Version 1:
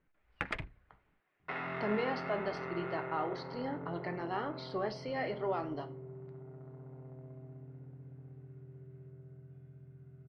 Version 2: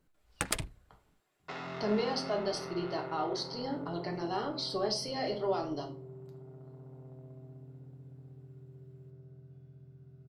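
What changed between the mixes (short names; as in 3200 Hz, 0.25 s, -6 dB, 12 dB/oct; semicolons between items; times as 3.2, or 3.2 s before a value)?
speech: send +7.5 dB; first sound +4.5 dB; master: remove synth low-pass 2100 Hz, resonance Q 2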